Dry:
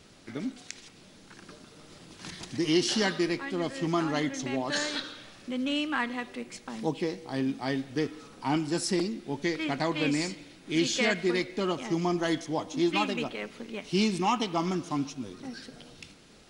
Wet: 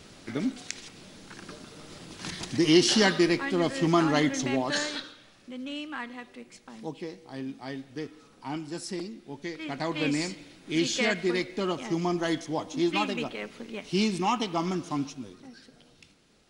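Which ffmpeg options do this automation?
-af "volume=3.98,afade=t=out:st=4.4:d=0.77:silence=0.251189,afade=t=in:st=9.57:d=0.47:silence=0.446684,afade=t=out:st=15.03:d=0.45:silence=0.398107"

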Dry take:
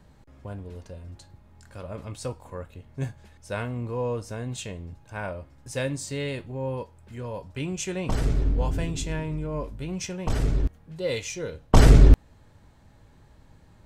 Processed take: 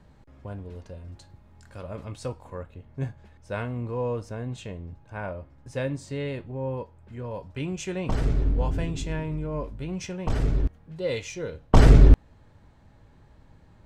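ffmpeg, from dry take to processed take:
-af "asetnsamples=n=441:p=0,asendcmd='1.08 lowpass f 6700;2.04 lowpass f 4300;2.63 lowpass f 2000;3.54 lowpass f 3300;4.29 lowpass f 1800;7.31 lowpass f 3500',lowpass=f=4300:p=1"

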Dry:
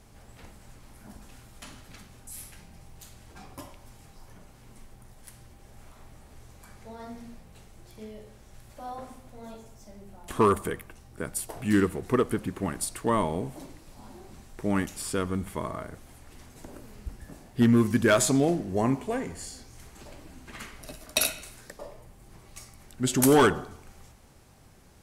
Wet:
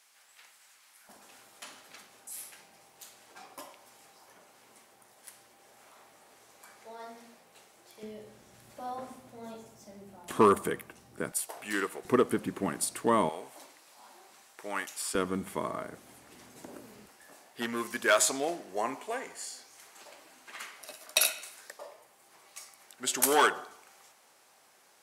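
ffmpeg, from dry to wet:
-af "asetnsamples=n=441:p=0,asendcmd='1.09 highpass f 470;8.03 highpass f 170;11.32 highpass f 620;12.05 highpass f 190;13.29 highpass f 780;15.15 highpass f 210;17.06 highpass f 650',highpass=1500"

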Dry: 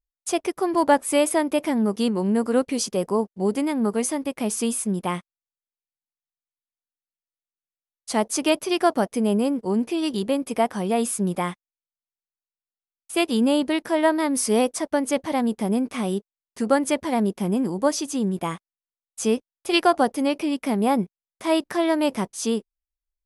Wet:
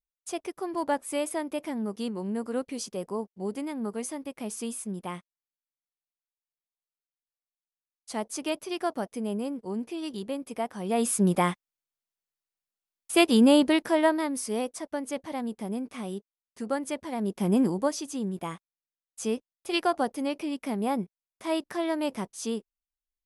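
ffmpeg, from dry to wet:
-af "volume=4.22,afade=t=in:st=10.78:d=0.48:silence=0.266073,afade=t=out:st=13.59:d=0.82:silence=0.266073,afade=t=in:st=17.18:d=0.44:silence=0.281838,afade=t=out:st=17.62:d=0.28:silence=0.375837"

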